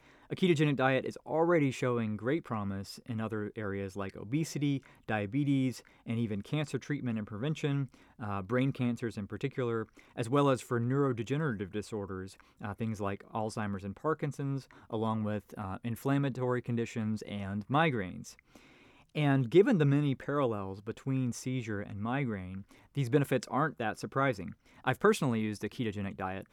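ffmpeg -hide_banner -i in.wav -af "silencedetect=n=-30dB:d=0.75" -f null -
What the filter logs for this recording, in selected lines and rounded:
silence_start: 18.04
silence_end: 19.17 | silence_duration: 1.13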